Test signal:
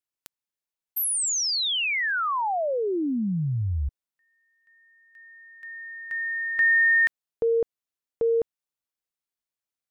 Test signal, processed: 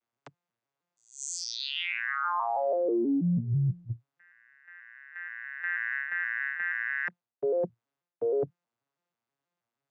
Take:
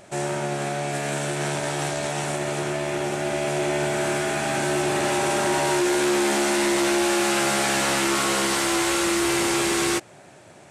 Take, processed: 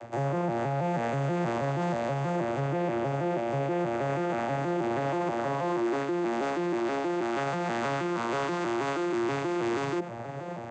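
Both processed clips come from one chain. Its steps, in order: vocoder on a broken chord minor triad, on A#2, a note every 160 ms; peaking EQ 1 kHz +8.5 dB 2.8 oct; reverse; compression 16:1, threshold -32 dBFS; reverse; peak limiter -29.5 dBFS; trim +8 dB

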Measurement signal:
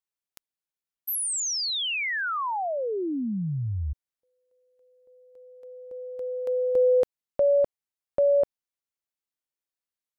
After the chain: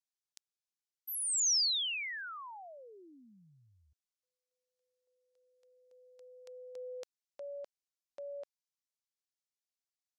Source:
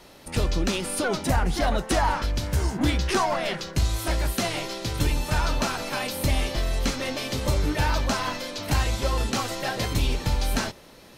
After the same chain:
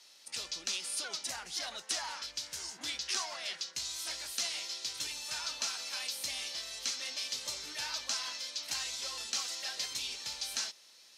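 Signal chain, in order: band-pass filter 5.6 kHz, Q 1.4

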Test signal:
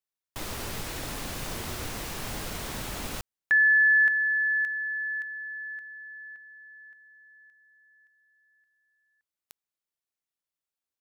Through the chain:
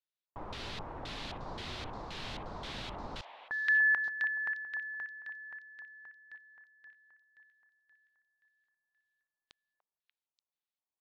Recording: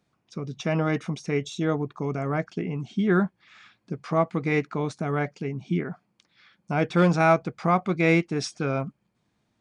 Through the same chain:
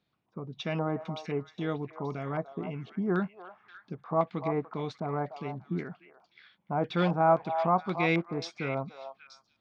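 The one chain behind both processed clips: LFO low-pass square 1.9 Hz 950–3800 Hz; repeats whose band climbs or falls 293 ms, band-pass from 820 Hz, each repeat 1.4 oct, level -6.5 dB; trim -7.5 dB

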